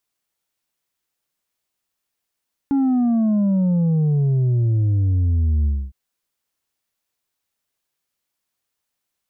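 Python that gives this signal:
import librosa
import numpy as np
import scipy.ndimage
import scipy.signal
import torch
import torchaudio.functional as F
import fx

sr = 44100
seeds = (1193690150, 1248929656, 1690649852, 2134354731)

y = fx.sub_drop(sr, level_db=-15.5, start_hz=280.0, length_s=3.21, drive_db=4.0, fade_s=0.26, end_hz=65.0)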